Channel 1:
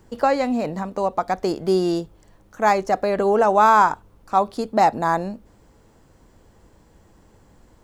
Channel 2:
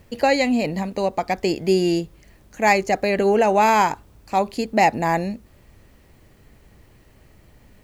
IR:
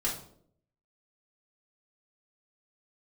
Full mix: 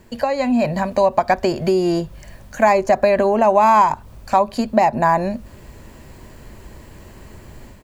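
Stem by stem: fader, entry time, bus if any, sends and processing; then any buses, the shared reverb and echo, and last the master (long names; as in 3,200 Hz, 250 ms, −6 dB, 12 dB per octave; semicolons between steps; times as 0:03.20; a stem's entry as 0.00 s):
0.0 dB, 0.00 s, no send, treble cut that deepens with the level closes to 1,200 Hz, closed at −15 dBFS; EQ curve with evenly spaced ripples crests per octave 1.4, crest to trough 9 dB; downward compressor, threshold −17 dBFS, peak gain reduction 7 dB
+1.0 dB, 1.1 ms, no send, downward compressor 6 to 1, threshold −27 dBFS, peak gain reduction 14.5 dB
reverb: not used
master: automatic gain control gain up to 8 dB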